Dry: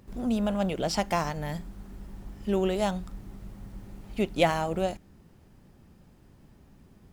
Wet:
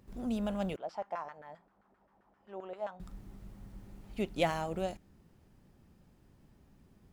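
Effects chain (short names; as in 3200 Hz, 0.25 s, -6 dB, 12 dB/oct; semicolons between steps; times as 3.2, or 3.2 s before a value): 0.76–3 LFO band-pass saw down 7.6 Hz 570–1500 Hz; gain -7 dB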